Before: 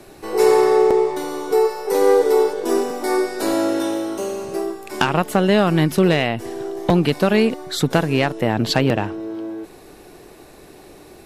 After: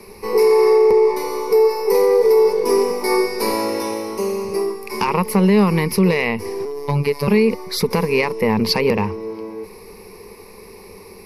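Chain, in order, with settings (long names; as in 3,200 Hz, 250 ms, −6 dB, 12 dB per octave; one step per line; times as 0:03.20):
EQ curve with evenly spaced ripples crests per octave 0.86, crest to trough 17 dB
brickwall limiter −7 dBFS, peak gain reduction 8 dB
0:06.65–0:07.28: phases set to zero 143 Hz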